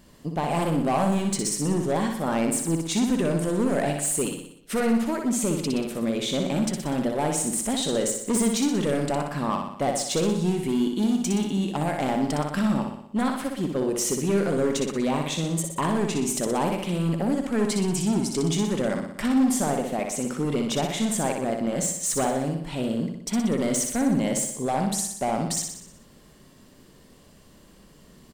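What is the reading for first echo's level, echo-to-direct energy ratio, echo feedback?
−5.0 dB, −3.5 dB, 56%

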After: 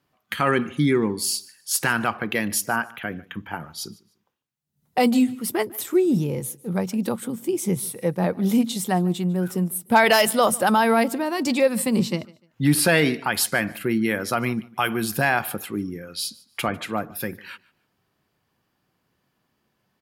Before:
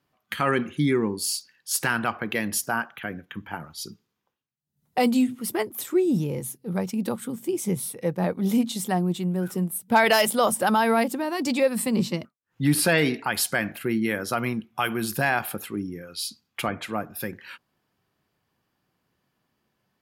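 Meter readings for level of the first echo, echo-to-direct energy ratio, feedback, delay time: −23.0 dB, −22.5 dB, 26%, 149 ms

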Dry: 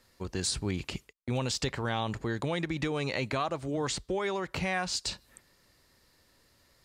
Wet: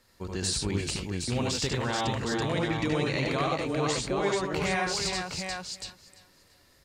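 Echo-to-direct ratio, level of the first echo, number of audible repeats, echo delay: 1.5 dB, −4.0 dB, 7, 74 ms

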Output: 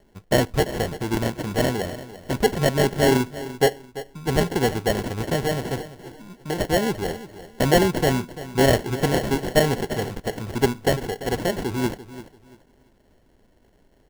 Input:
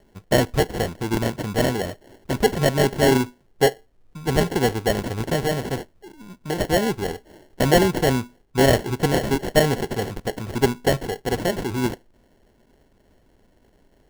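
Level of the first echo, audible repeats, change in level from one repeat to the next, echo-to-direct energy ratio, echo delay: −15.0 dB, 2, −11.5 dB, −14.5 dB, 341 ms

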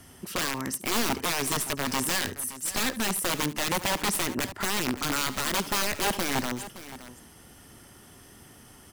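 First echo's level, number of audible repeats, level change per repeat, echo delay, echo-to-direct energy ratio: −17.0 dB, 2, repeats not evenly spaced, 72 ms, −13.0 dB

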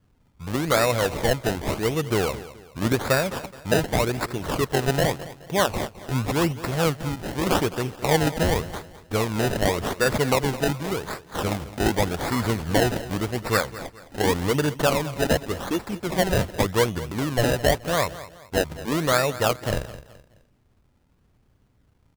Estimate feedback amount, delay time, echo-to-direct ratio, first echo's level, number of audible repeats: 36%, 212 ms, −15.5 dB, −16.0 dB, 3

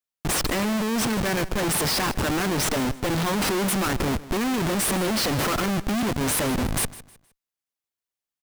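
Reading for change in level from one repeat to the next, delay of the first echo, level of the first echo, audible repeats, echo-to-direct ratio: −10.5 dB, 156 ms, −18.0 dB, 2, −17.5 dB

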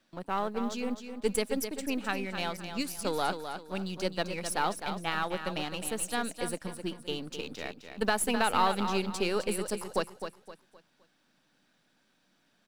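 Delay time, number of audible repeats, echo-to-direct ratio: 259 ms, 3, −8.0 dB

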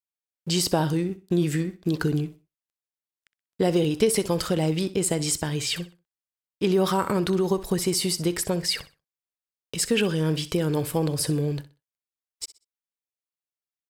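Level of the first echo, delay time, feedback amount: −16.0 dB, 63 ms, 26%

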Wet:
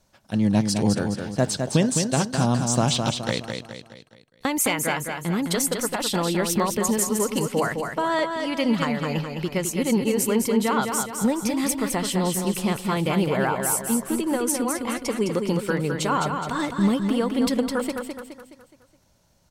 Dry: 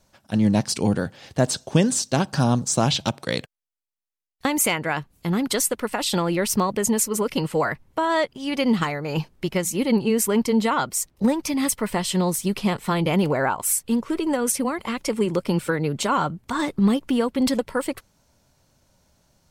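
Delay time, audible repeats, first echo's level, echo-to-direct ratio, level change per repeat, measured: 210 ms, 5, −5.5 dB, −4.5 dB, −7.0 dB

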